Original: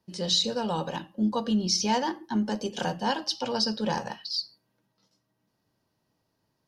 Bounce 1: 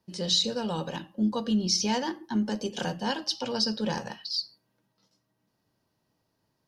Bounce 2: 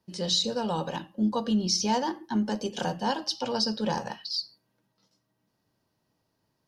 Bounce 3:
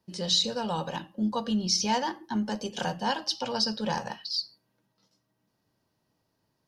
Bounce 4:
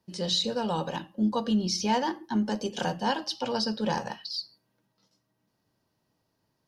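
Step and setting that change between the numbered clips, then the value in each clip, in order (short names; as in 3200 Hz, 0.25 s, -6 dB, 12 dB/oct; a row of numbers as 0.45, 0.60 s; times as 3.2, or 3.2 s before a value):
dynamic EQ, frequency: 850, 2200, 330, 5800 Hz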